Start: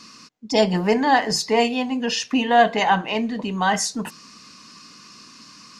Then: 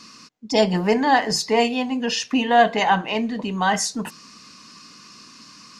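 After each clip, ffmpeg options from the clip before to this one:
ffmpeg -i in.wav -af anull out.wav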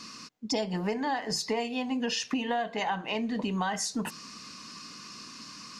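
ffmpeg -i in.wav -af "acompressor=threshold=-27dB:ratio=10" out.wav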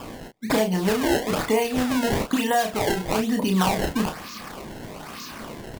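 ffmpeg -i in.wav -filter_complex "[0:a]acrusher=samples=21:mix=1:aa=0.000001:lfo=1:lforange=33.6:lforate=1.1,asplit=2[link_01][link_02];[link_02]adelay=32,volume=-5dB[link_03];[link_01][link_03]amix=inputs=2:normalize=0,volume=7dB" out.wav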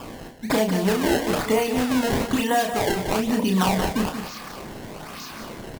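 ffmpeg -i in.wav -af "aecho=1:1:182:0.376" out.wav

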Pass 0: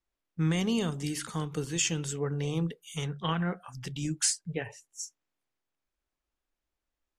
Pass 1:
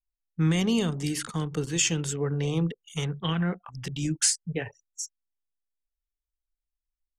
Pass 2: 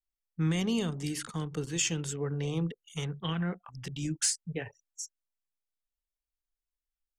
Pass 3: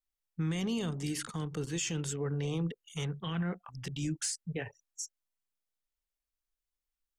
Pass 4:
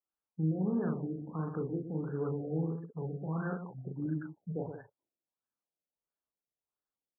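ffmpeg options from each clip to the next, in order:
ffmpeg -i in.wav -filter_complex "[0:a]anlmdn=0.1,acrossover=split=470|1800[link_01][link_02][link_03];[link_02]alimiter=level_in=9.5dB:limit=-24dB:level=0:latency=1:release=109,volume=-9.5dB[link_04];[link_01][link_04][link_03]amix=inputs=3:normalize=0,volume=4dB" out.wav
ffmpeg -i in.wav -af "volume=14dB,asoftclip=hard,volume=-14dB,volume=-5dB" out.wav
ffmpeg -i in.wav -af "alimiter=level_in=2dB:limit=-24dB:level=0:latency=1:release=11,volume=-2dB" out.wav
ffmpeg -i in.wav -af "highpass=140,lowpass=5300,aecho=1:1:37.9|122.4|183.7:0.708|0.398|0.282,afftfilt=real='re*lt(b*sr/1024,730*pow(1800/730,0.5+0.5*sin(2*PI*1.5*pts/sr)))':imag='im*lt(b*sr/1024,730*pow(1800/730,0.5+0.5*sin(2*PI*1.5*pts/sr)))':win_size=1024:overlap=0.75" out.wav

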